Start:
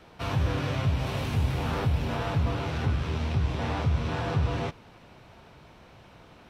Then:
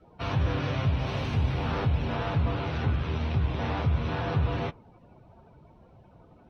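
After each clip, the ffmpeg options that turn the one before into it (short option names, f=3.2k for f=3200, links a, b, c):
-af "afftdn=nr=19:nf=-49"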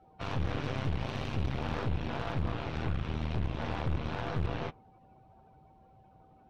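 -af "aeval=exprs='0.168*(cos(1*acos(clip(val(0)/0.168,-1,1)))-cos(1*PI/2))+0.0531*(cos(4*acos(clip(val(0)/0.168,-1,1)))-cos(4*PI/2))':c=same,volume=16.5dB,asoftclip=hard,volume=-16.5dB,aeval=exprs='val(0)+0.002*sin(2*PI*770*n/s)':c=same,volume=-7dB"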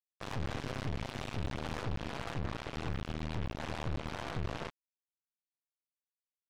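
-af "acrusher=bits=4:mix=0:aa=0.5,volume=-5dB"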